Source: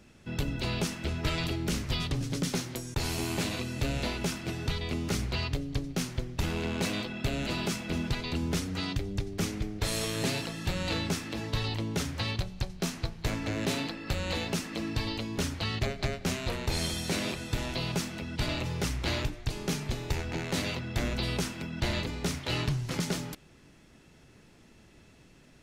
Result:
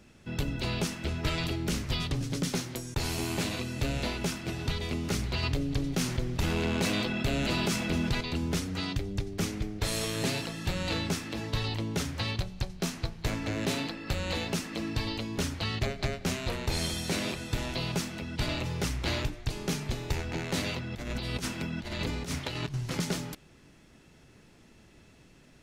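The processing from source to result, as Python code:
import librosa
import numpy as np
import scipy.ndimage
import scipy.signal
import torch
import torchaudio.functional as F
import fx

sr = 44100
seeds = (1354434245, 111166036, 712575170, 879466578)

y = fx.echo_throw(x, sr, start_s=3.94, length_s=0.95, ms=560, feedback_pct=40, wet_db=-15.0)
y = fx.env_flatten(y, sr, amount_pct=50, at=(5.43, 8.21))
y = fx.over_compress(y, sr, threshold_db=-33.0, ratio=-0.5, at=(20.92, 22.74))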